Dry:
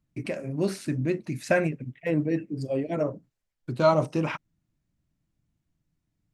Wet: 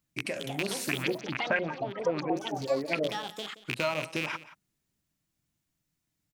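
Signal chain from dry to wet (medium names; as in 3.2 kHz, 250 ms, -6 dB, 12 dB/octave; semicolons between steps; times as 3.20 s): rattle on loud lows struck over -29 dBFS, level -18 dBFS; tilt EQ +2.5 dB/octave; compression 4:1, threshold -28 dBFS, peak gain reduction 11 dB; 0.87–3.07 s: LFO low-pass saw up 7.5 Hz -> 2.3 Hz 370–2800 Hz; ever faster or slower copies 272 ms, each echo +5 st, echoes 3, each echo -6 dB; delay 176 ms -17 dB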